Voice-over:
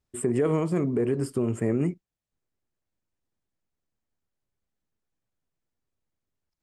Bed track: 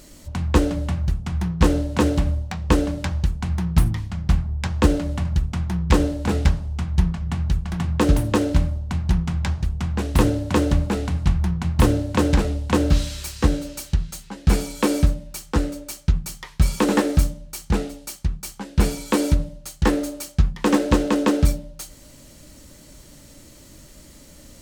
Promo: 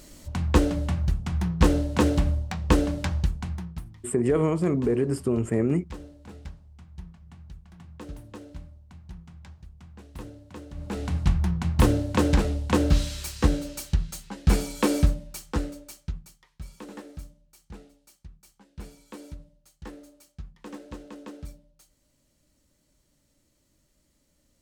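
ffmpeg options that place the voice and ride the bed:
-filter_complex "[0:a]adelay=3900,volume=1.5dB[a];[1:a]volume=17.5dB,afade=t=out:st=3.17:d=0.64:silence=0.0944061,afade=t=in:st=10.74:d=0.43:silence=0.1,afade=t=out:st=15.05:d=1.32:silence=0.1[b];[a][b]amix=inputs=2:normalize=0"

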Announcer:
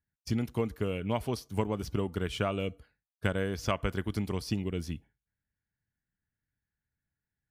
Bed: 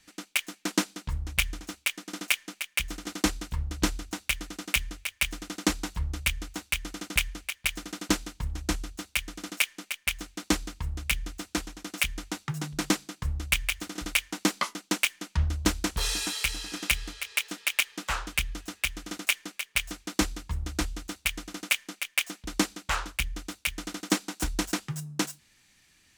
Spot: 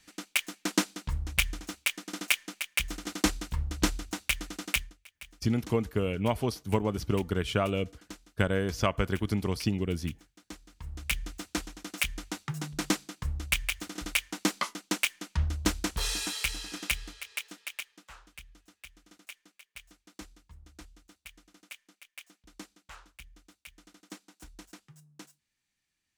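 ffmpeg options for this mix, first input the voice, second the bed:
-filter_complex "[0:a]adelay=5150,volume=3dB[a];[1:a]volume=17dB,afade=t=out:st=4.69:d=0.25:silence=0.105925,afade=t=in:st=10.66:d=0.48:silence=0.133352,afade=t=out:st=16.58:d=1.48:silence=0.125893[b];[a][b]amix=inputs=2:normalize=0"

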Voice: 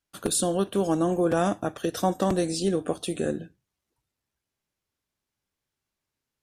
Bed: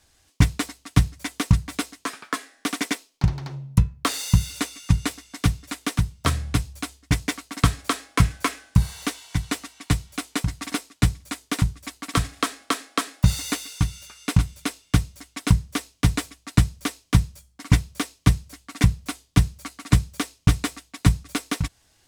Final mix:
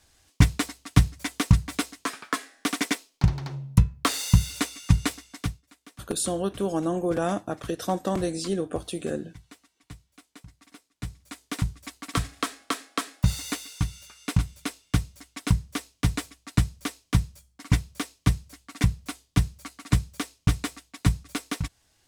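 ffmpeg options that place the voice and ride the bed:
-filter_complex "[0:a]adelay=5850,volume=-2.5dB[a];[1:a]volume=18dB,afade=t=out:st=5.14:d=0.48:silence=0.0749894,afade=t=in:st=10.9:d=0.84:silence=0.11885[b];[a][b]amix=inputs=2:normalize=0"

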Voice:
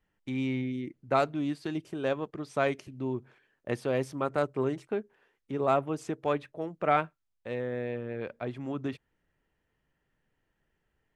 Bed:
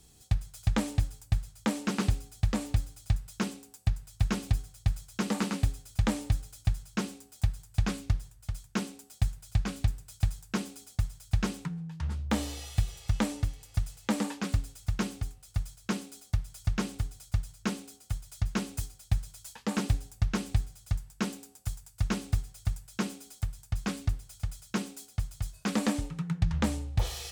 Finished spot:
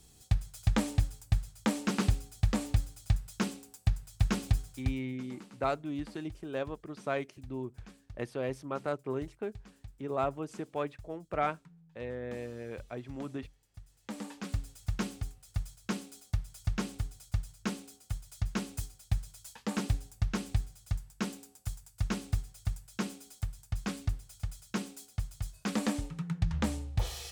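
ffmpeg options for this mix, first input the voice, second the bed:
-filter_complex "[0:a]adelay=4500,volume=-5.5dB[a];[1:a]volume=18dB,afade=t=out:st=4.77:d=0.23:silence=0.0891251,afade=t=in:st=13.87:d=0.98:silence=0.11885[b];[a][b]amix=inputs=2:normalize=0"

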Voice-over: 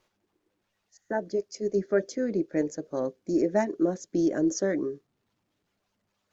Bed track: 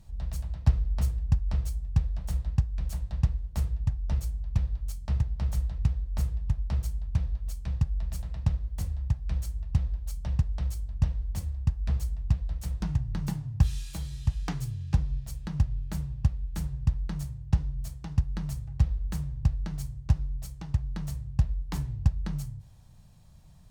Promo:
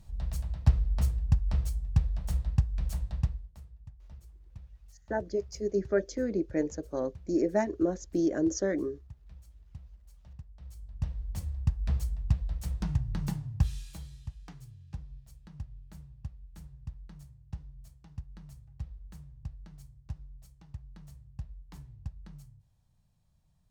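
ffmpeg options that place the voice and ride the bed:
-filter_complex "[0:a]adelay=4000,volume=-2.5dB[a];[1:a]volume=19dB,afade=t=out:st=3.03:d=0.55:silence=0.0944061,afade=t=in:st=10.58:d=1.04:silence=0.105925,afade=t=out:st=13.28:d=1.07:silence=0.188365[b];[a][b]amix=inputs=2:normalize=0"

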